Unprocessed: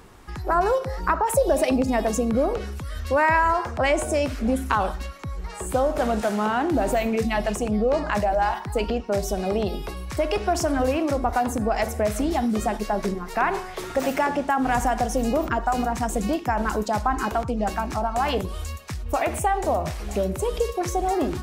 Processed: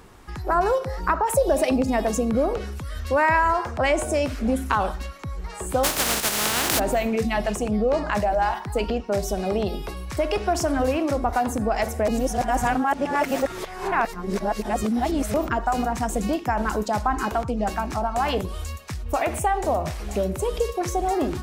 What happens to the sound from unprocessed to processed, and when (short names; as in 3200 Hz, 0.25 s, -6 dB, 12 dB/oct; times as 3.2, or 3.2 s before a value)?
5.83–6.78 spectral contrast lowered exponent 0.24
12.08–15.34 reverse